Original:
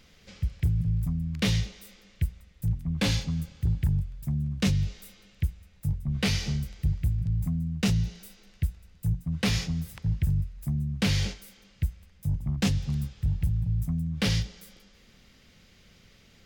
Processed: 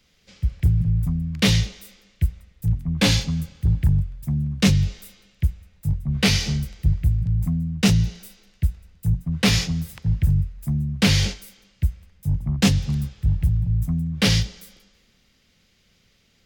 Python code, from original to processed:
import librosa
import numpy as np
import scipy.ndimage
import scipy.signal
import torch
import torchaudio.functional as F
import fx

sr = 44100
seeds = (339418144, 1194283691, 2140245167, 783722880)

y = fx.band_widen(x, sr, depth_pct=40)
y = y * 10.0 ** (6.0 / 20.0)